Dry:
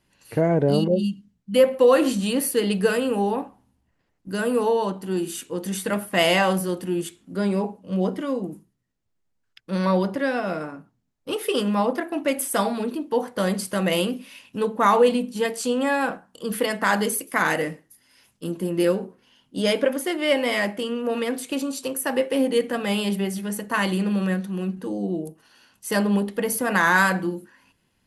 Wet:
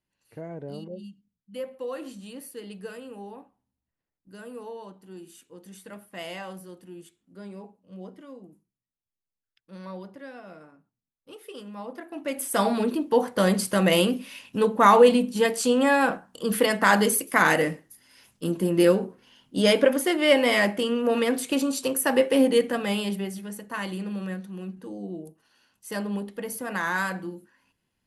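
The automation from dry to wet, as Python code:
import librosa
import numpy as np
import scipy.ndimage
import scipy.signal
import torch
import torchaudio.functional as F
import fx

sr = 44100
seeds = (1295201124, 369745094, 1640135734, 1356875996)

y = fx.gain(x, sr, db=fx.line((11.72, -18.0), (12.36, -6.0), (12.72, 2.0), (22.44, 2.0), (23.58, -9.0)))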